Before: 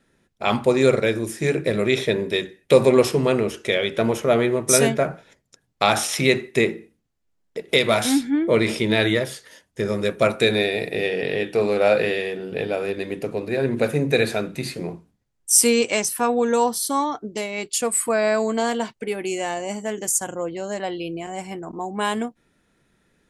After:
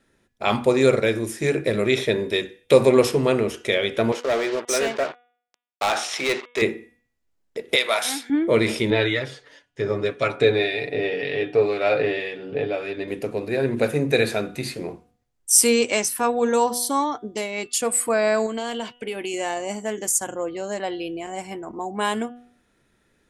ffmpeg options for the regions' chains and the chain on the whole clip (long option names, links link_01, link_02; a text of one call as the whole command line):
ffmpeg -i in.wav -filter_complex "[0:a]asettb=1/sr,asplit=3[link_01][link_02][link_03];[link_01]atrim=end=4.124[link_04];[link_02]atrim=start=4.12:end=6.62,asetpts=PTS-STARTPTS,afade=type=in:duration=0.004:curve=qsin,afade=type=out:start_time=2.496:duration=0.004:curve=qsin,acrusher=bits=4:mix=0:aa=0.5,highpass=410,lowpass=5600,asoftclip=type=hard:threshold=-17.5dB[link_05];[link_03]atrim=start=6.616[link_06];[link_04][link_05]acrossfade=duration=0.004:curve1=hsin:curve2=qsin[link_07];[link_07][link_06]acrossfade=duration=0.004:curve1=qsin:curve2=hsin,asettb=1/sr,asplit=3[link_08][link_09][link_10];[link_08]atrim=end=7.754[link_11];[link_09]atrim=start=7.75:end=8.3,asetpts=PTS-STARTPTS,afade=type=in:duration=0.004:curve=qsin,afade=type=out:start_time=0.546:duration=0.004:curve=qsin,highpass=680,bandreject=frequency=7100:width=27[link_12];[link_10]atrim=start=8.296[link_13];[link_11][link_12]acrossfade=duration=0.004:curve1=hsin:curve2=qsin[link_14];[link_14][link_13]acrossfade=duration=0.004:curve1=qsin:curve2=hsin,asettb=1/sr,asplit=3[link_15][link_16][link_17];[link_15]atrim=end=8.904[link_18];[link_16]atrim=start=8.9:end=13.08,asetpts=PTS-STARTPTS,afade=type=in:duration=0.004:curve=qsin,afade=type=out:start_time=4.176:duration=0.004:curve=qsin,lowpass=4600,aecho=1:1:7:0.64,atrim=end_sample=184338,acrossover=split=1400[link_19][link_20];[link_19]aeval=exprs='val(0)*(1-0.5/2+0.5/2*cos(2*PI*1.9*n/s))':channel_layout=same[link_21];[link_20]aeval=exprs='val(0)*(1-0.5/2-0.5/2*cos(2*PI*1.9*n/s))':channel_layout=same[link_22];[link_21][link_22]amix=inputs=2:normalize=0[link_23];[link_17]atrim=start=13.076[link_24];[link_18][link_23]acrossfade=duration=0.004:curve1=hsin:curve2=qsin[link_25];[link_25][link_24]acrossfade=duration=0.004:curve1=qsin:curve2=hsin,asettb=1/sr,asplit=3[link_26][link_27][link_28];[link_26]atrim=end=18.464[link_29];[link_27]atrim=start=18.46:end=19.34,asetpts=PTS-STARTPTS,afade=type=in:duration=0.004:curve=qsin,afade=type=out:start_time=0.876:duration=0.004:curve=qsin,equalizer=frequency=3000:width_type=o:width=0.43:gain=8,acompressor=threshold=-25dB:ratio=3:attack=3.2:release=140:knee=1:detection=peak[link_30];[link_28]atrim=start=19.336[link_31];[link_29][link_30]acrossfade=duration=0.004:curve1=hsin:curve2=qsin[link_32];[link_32][link_31]acrossfade=duration=0.004:curve1=qsin:curve2=hsin,equalizer=frequency=170:width_type=o:width=0.26:gain=-8.5,bandreject=frequency=242.9:width_type=h:width=4,bandreject=frequency=485.8:width_type=h:width=4,bandreject=frequency=728.7:width_type=h:width=4,bandreject=frequency=971.6:width_type=h:width=4,bandreject=frequency=1214.5:width_type=h:width=4,bandreject=frequency=1457.4:width_type=h:width=4,bandreject=frequency=1700.3:width_type=h:width=4,bandreject=frequency=1943.2:width_type=h:width=4,bandreject=frequency=2186.1:width_type=h:width=4,bandreject=frequency=2429:width_type=h:width=4,bandreject=frequency=2671.9:width_type=h:width=4,bandreject=frequency=2914.8:width_type=h:width=4,bandreject=frequency=3157.7:width_type=h:width=4,bandreject=frequency=3400.6:width_type=h:width=4,bandreject=frequency=3643.5:width_type=h:width=4" out.wav